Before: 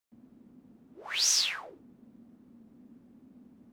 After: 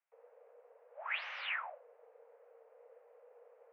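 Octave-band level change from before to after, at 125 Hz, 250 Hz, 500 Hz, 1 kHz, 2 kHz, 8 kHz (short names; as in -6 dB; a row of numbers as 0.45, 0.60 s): n/a, under -40 dB, +0.5 dB, +1.0 dB, -1.0 dB, under -40 dB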